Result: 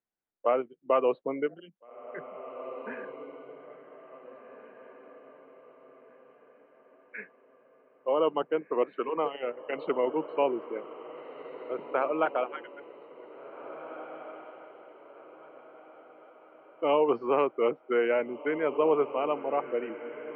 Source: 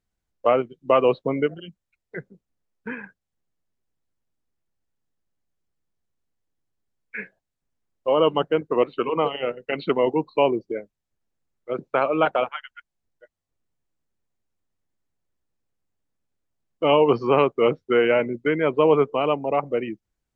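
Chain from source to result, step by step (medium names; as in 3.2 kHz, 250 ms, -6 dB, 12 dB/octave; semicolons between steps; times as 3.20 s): three-band isolator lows -21 dB, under 220 Hz, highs -20 dB, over 2.7 kHz; echo that smears into a reverb 1846 ms, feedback 41%, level -12.5 dB; trim -6.5 dB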